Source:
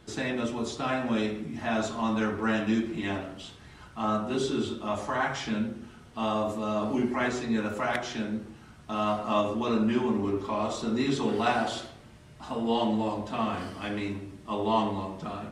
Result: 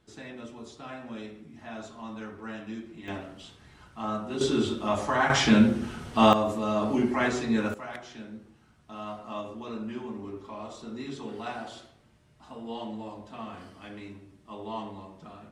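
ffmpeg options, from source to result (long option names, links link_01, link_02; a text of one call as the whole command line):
ffmpeg -i in.wav -af "asetnsamples=nb_out_samples=441:pad=0,asendcmd='3.08 volume volume -4dB;4.41 volume volume 3.5dB;5.3 volume volume 11dB;6.33 volume volume 2dB;7.74 volume volume -10.5dB',volume=-12dB" out.wav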